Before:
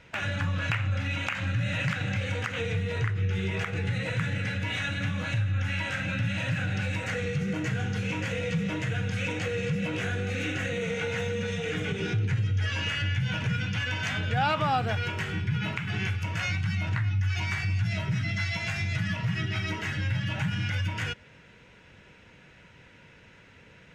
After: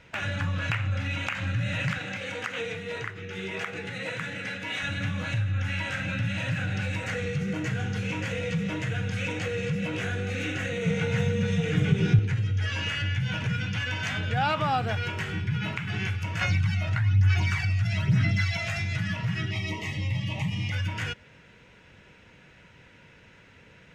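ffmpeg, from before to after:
-filter_complex "[0:a]asettb=1/sr,asplit=3[a][b][c];[a]atrim=end=1.984[d];[b]atrim=start=1.98:end=4.83,asetpts=PTS-STARTPTS,afade=t=in:d=0.004:c=qsin,afade=t=out:st=2.846:d=0.004:c=qsin,highpass=240[e];[c]atrim=start=4.826[f];[d][e]acrossfade=d=0.004:c1=hsin:c2=qsin[g];[g][f]acrossfade=d=0.004:c1=qsin:c2=hsin,asettb=1/sr,asplit=3[h][i][j];[h]atrim=end=10.854[k];[i]atrim=start=10.85:end=12.19,asetpts=PTS-STARTPTS,afade=t=in:d=0.004:c=qsin,afade=t=out:st=1.336:d=0.004:c=qsin,equalizer=f=140:w=1.5:g=14[l];[j]atrim=start=12.186[m];[k][l]acrossfade=d=0.004:c1=hsin:c2=qsin[n];[n][m]acrossfade=d=0.004:c1=qsin:c2=hsin,asettb=1/sr,asplit=3[o][p][q];[o]atrim=end=16.414[r];[p]atrim=start=16.41:end=18.79,asetpts=PTS-STARTPTS,afade=t=in:d=0.004:c=qsin,afade=t=out:st=2.376:d=0.004:c=qsin,aphaser=in_gain=1:out_gain=1:delay=1.6:decay=0.54:speed=1.1:type=sinusoidal[s];[q]atrim=start=18.786[t];[r][s]acrossfade=d=0.004:c1=hsin:c2=qsin[u];[u][t]acrossfade=d=0.004:c1=qsin:c2=hsin,asettb=1/sr,asplit=3[v][w][x];[v]atrim=end=19.514[y];[w]atrim=start=19.51:end=20.72,asetpts=PTS-STARTPTS,afade=t=in:d=0.004:c=qsin,afade=t=out:st=1.206:d=0.004:c=qsin,asuperstop=centerf=1500:order=8:qfactor=2.3[z];[x]atrim=start=20.716[aa];[y][z]acrossfade=d=0.004:c1=hsin:c2=qsin[ab];[ab][aa]acrossfade=d=0.004:c1=qsin:c2=hsin"

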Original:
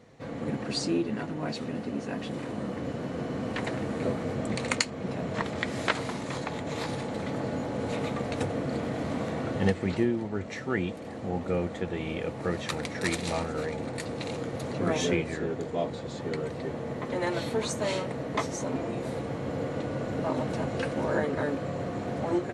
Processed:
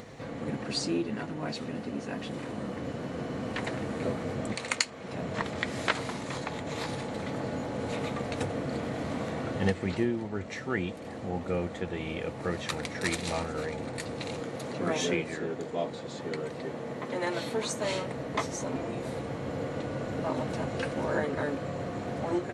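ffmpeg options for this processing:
-filter_complex "[0:a]asettb=1/sr,asplit=3[a][b][c];[a]atrim=end=4.534[d];[b]atrim=start=4.53:end=5.13,asetpts=PTS-STARTPTS,afade=t=in:d=0.004:c=qsin,afade=t=out:st=0.596:d=0.004:c=qsin,lowshelf=f=440:g=-9.5[e];[c]atrim=start=5.126[f];[d][e]acrossfade=d=0.004:c1=hsin:c2=qsin[g];[g][f]acrossfade=d=0.004:c1=qsin:c2=hsin,asettb=1/sr,asplit=3[h][i][j];[h]atrim=end=14.404[k];[i]atrim=start=14.4:end=17.85,asetpts=PTS-STARTPTS,afade=t=in:d=0.004:c=qsin,afade=t=out:st=3.446:d=0.004:c=qsin,highpass=140[l];[j]atrim=start=17.846[m];[k][l]acrossfade=d=0.004:c1=hsin:c2=qsin[n];[n][m]acrossfade=d=0.004:c1=qsin:c2=hsin,equalizer=f=240:w=0.31:g=-2.5,acompressor=mode=upward:threshold=-36dB:ratio=2.5"

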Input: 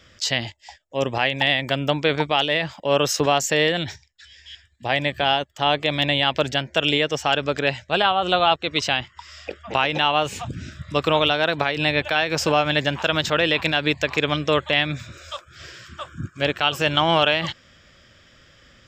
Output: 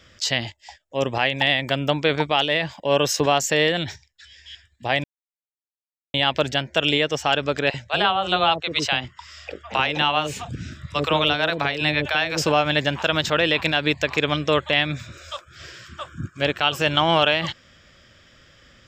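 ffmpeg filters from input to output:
-filter_complex "[0:a]asettb=1/sr,asplit=3[a][b][c];[a]atrim=end=2.634[d];[b]atrim=start=2.63:end=3.26,asetpts=PTS-STARTPTS,afade=t=in:d=0.004:c=qsin,afade=t=out:st=0.626:d=0.004:c=qsin,asuperstop=centerf=1300:order=4:qfactor=7.1[e];[c]atrim=start=3.256[f];[d][e]acrossfade=d=0.004:c1=hsin:c2=qsin[g];[g][f]acrossfade=d=0.004:c1=qsin:c2=hsin,asettb=1/sr,asplit=3[h][i][j];[h]atrim=end=7.704[k];[i]atrim=start=7.7:end=12.46,asetpts=PTS-STARTPTS,afade=t=in:d=0.004:c=qsin,afade=t=out:st=4.756:d=0.004:c=qsin,acrossover=split=550[l][m];[l]adelay=40[n];[n][m]amix=inputs=2:normalize=0,atrim=end_sample=209916[o];[j]atrim=start=12.456[p];[k][o]acrossfade=d=0.004:c1=hsin:c2=qsin[q];[q][p]acrossfade=d=0.004:c1=qsin:c2=hsin,asplit=3[r][s][t];[r]atrim=end=5.04,asetpts=PTS-STARTPTS,afade=t=out:st=5.036:d=0.004:c=hsin[u];[s]atrim=start=5.04:end=6.14,asetpts=PTS-STARTPTS,volume=0[v];[t]atrim=start=6.14,asetpts=PTS-STARTPTS,afade=t=in:d=0.004:c=hsin[w];[u][v][w]concat=n=3:v=0:a=1"

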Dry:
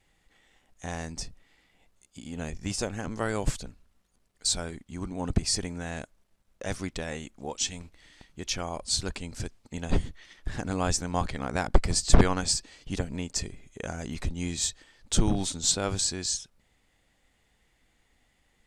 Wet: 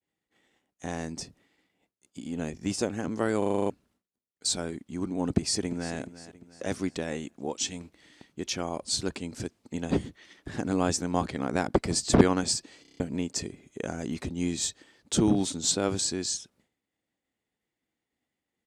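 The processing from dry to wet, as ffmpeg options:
-filter_complex "[0:a]asplit=2[a][b];[b]afade=t=in:st=5.28:d=0.01,afade=t=out:st=5.96:d=0.01,aecho=0:1:350|700|1050|1400:0.177828|0.0800226|0.0360102|0.0162046[c];[a][c]amix=inputs=2:normalize=0,asplit=15[d][e][f][g][h][i][j][k][l][m][n][o][p][q][r];[d]atrim=end=3.422[s];[e]atrim=start=3.378:end=3.422[t];[f]atrim=start=3.378:end=3.422[u];[g]atrim=start=3.378:end=3.422[v];[h]atrim=start=3.378:end=3.422[w];[i]atrim=start=3.378:end=3.422[x];[j]atrim=start=3.378:end=3.422[y];[k]atrim=start=3.378:end=3.422[z];[l]atrim=start=3.698:end=12.852[aa];[m]atrim=start=12.818:end=12.852[ab];[n]atrim=start=12.818:end=12.852[ac];[o]atrim=start=12.818:end=12.852[ad];[p]atrim=start=12.818:end=12.852[ae];[q]atrim=start=12.818:end=12.852[af];[r]atrim=start=12.998[ag];[s][t]acrossfade=d=0.004:c1=hsin:c2=hsin[ah];[ah][u]acrossfade=d=0.004:c1=hsin:c2=hsin[ai];[ai][v]acrossfade=d=0.004:c1=hsin:c2=hsin[aj];[aj][w]acrossfade=d=0.004:c1=hsin:c2=hsin[ak];[ak][x]acrossfade=d=0.004:c1=hsin:c2=hsin[al];[al][y]acrossfade=d=0.004:c1=hsin:c2=hsin[am];[am][z]acrossfade=d=0.004:c1=hsin:c2=hsin[an];[an][aa]acrossfade=d=0.004:c1=hsin:c2=hsin[ao];[ao][ab]acrossfade=d=0.004:c1=hsin:c2=hsin[ap];[ap][ac]acrossfade=d=0.004:c1=hsin:c2=hsin[aq];[aq][ad]acrossfade=d=0.004:c1=hsin:c2=hsin[ar];[ar][ae]acrossfade=d=0.004:c1=hsin:c2=hsin[as];[as][af]acrossfade=d=0.004:c1=hsin:c2=hsin[at];[at][ag]acrossfade=d=0.004:c1=hsin:c2=hsin,highpass=100,agate=range=-33dB:threshold=-59dB:ratio=3:detection=peak,equalizer=f=310:w=0.93:g=8,volume=-1.5dB"

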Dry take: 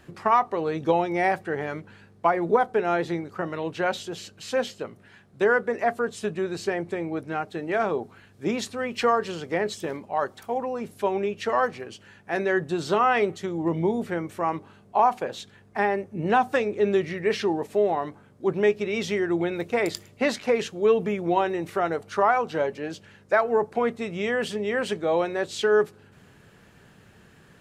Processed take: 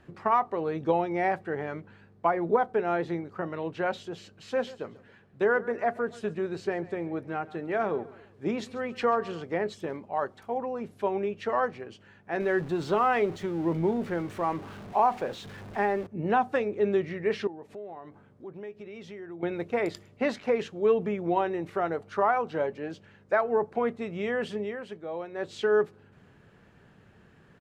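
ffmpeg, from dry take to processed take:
-filter_complex "[0:a]asplit=3[a][b][c];[a]afade=t=out:st=4.5:d=0.02[d];[b]aecho=1:1:137|274|411:0.112|0.0482|0.0207,afade=t=in:st=4.5:d=0.02,afade=t=out:st=9.42:d=0.02[e];[c]afade=t=in:st=9.42:d=0.02[f];[d][e][f]amix=inputs=3:normalize=0,asettb=1/sr,asplit=3[g][h][i];[g]atrim=end=12.404[j];[h]atrim=start=12.4:end=16.07,asetpts=PTS-STARTPTS,afade=t=in:d=0.004:c=qsin,afade=t=out:st=3.666:d=0.004:c=qsin,aeval=exprs='val(0)+0.5*0.0178*sgn(val(0))':c=same[k];[i]atrim=start=16.066[l];[j][k]acrossfade=d=0.004:c1=hsin:c2=qsin[m];[m][l]acrossfade=d=0.004:c1=qsin:c2=hsin,asettb=1/sr,asplit=3[n][o][p];[n]atrim=end=17.474[q];[o]atrim=start=17.47:end=19.43,asetpts=PTS-STARTPTS,afade=t=in:d=0.004:c=qsin,afade=t=out:st=1.956:d=0.004:c=qsin,acompressor=threshold=-42dB:ratio=2.5:attack=3.2:release=140:knee=1:detection=peak[r];[p]atrim=start=19.426[s];[q][r]acrossfade=d=0.004:c1=hsin:c2=qsin[t];[t][s]acrossfade=d=0.004:c1=qsin:c2=hsin,asplit=3[u][v][w];[u]atrim=end=24.77,asetpts=PTS-STARTPTS,afade=t=out:st=24.61:d=0.16:silence=0.354813[x];[v]atrim=start=24.77:end=25.31,asetpts=PTS-STARTPTS,volume=-9dB[y];[w]atrim=start=25.31,asetpts=PTS-STARTPTS,afade=t=in:d=0.16:silence=0.354813[z];[x][y][z]concat=n=3:v=0:a=1,lowpass=f=2.1k:p=1,volume=-3dB"

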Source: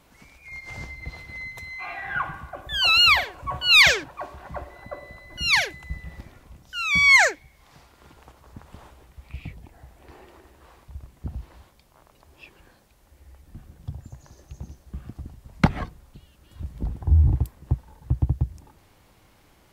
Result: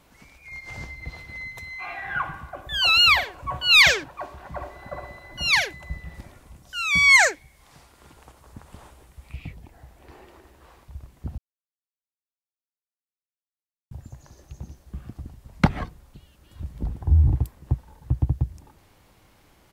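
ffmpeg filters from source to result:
-filter_complex "[0:a]asplit=2[a][b];[b]afade=t=in:st=4.18:d=0.01,afade=t=out:st=4.85:d=0.01,aecho=0:1:420|840|1260|1680|2100|2520:0.562341|0.281171|0.140585|0.0702927|0.0351463|0.0175732[c];[a][c]amix=inputs=2:normalize=0,asettb=1/sr,asplit=3[d][e][f];[d]atrim=end=6.144[g];[e]atrim=start=6.14:end=9.35,asetpts=PTS-STARTPTS,afade=t=in:d=0.004:c=qsin,afade=t=out:st=3.206:d=0.004:c=qsin,equalizer=f=9.2k:t=o:w=0.86:g=6.5[h];[f]atrim=start=9.346[i];[g][h]acrossfade=d=0.004:c1=hsin:c2=qsin[j];[j][i]acrossfade=d=0.004:c1=qsin:c2=hsin,asplit=3[k][l][m];[k]atrim=end=11.38,asetpts=PTS-STARTPTS,afade=t=out:st=11.376:d=0.004:c=hsin[n];[l]atrim=start=11.38:end=13.91,asetpts=PTS-STARTPTS,volume=0[o];[m]atrim=start=13.91,asetpts=PTS-STARTPTS,afade=t=in:d=0.004:c=hsin[p];[n][o][p]concat=n=3:v=0:a=1"

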